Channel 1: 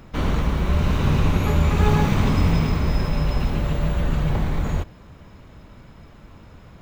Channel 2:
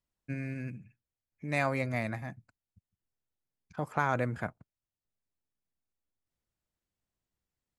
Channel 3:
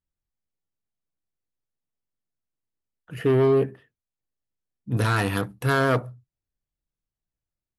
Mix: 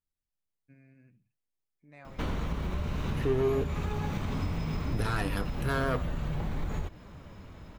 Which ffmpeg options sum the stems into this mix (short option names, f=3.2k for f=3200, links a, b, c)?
-filter_complex "[0:a]acompressor=threshold=-22dB:ratio=6,adelay=2050,volume=1.5dB[a];[1:a]lowpass=f=2.5k:p=1,adelay=400,volume=-16.5dB[b];[2:a]volume=0dB[c];[a][b][c]amix=inputs=3:normalize=0,flanger=delay=2.3:depth=9.7:regen=77:speed=0.59:shape=sinusoidal,acompressor=threshold=-33dB:ratio=1.5"